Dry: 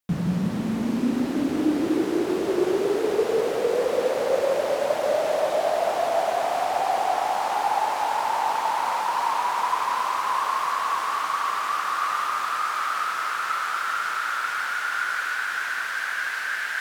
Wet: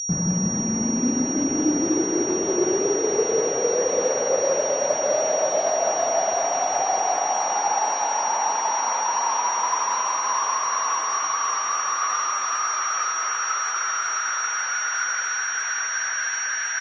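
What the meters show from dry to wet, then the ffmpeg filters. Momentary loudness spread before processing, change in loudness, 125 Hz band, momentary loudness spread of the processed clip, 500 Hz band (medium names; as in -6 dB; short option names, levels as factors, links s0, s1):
3 LU, +2.0 dB, no reading, 2 LU, +0.5 dB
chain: -filter_complex "[0:a]afftdn=nr=28:nf=-44,highshelf=f=2600:g=-4,aeval=exprs='val(0)+0.0447*sin(2*PI*5700*n/s)':c=same,asplit=2[s0][s1];[s1]adelay=752,lowpass=f=960:p=1,volume=0.158,asplit=2[s2][s3];[s3]adelay=752,lowpass=f=960:p=1,volume=0.35,asplit=2[s4][s5];[s5]adelay=752,lowpass=f=960:p=1,volume=0.35[s6];[s2][s4][s6]amix=inputs=3:normalize=0[s7];[s0][s7]amix=inputs=2:normalize=0,volume=1.12" -ar 24000 -c:a libmp3lame -b:a 32k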